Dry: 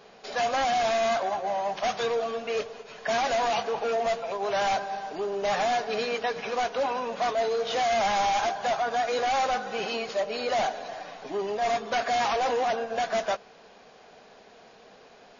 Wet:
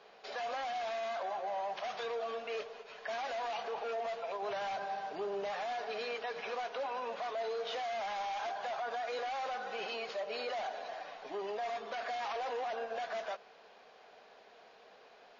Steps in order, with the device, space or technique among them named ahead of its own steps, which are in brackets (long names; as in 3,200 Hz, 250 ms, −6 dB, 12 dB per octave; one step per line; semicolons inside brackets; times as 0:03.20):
DJ mixer with the lows and highs turned down (three-way crossover with the lows and the highs turned down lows −12 dB, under 380 Hz, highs −17 dB, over 5,500 Hz; brickwall limiter −26 dBFS, peak gain reduction 10 dB)
0:04.42–0:05.52: parametric band 130 Hz +9 dB 1.7 octaves
level −5 dB